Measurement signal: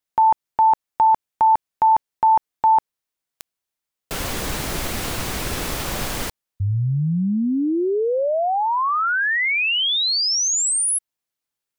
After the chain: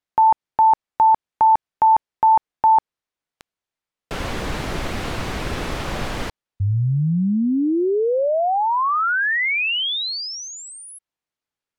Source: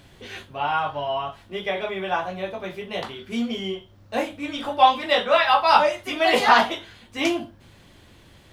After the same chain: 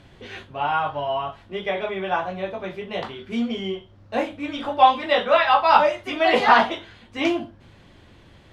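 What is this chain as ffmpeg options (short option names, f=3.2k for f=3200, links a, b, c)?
-filter_complex "[0:a]aemphasis=mode=reproduction:type=50fm,acrossover=split=4600[a][b];[b]acompressor=threshold=-41dB:ratio=4:attack=1:release=60[c];[a][c]amix=inputs=2:normalize=0,volume=1dB"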